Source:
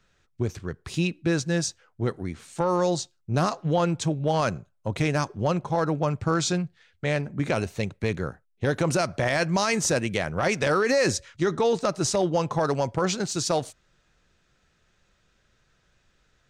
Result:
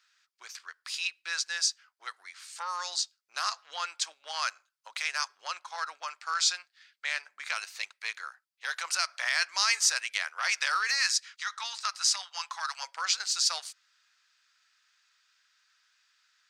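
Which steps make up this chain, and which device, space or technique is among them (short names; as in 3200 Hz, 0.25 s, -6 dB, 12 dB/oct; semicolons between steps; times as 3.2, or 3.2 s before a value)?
headphones lying on a table (HPF 1200 Hz 24 dB/oct; bell 4800 Hz +8 dB 0.36 oct); 10.91–12.83 HPF 790 Hz 24 dB/oct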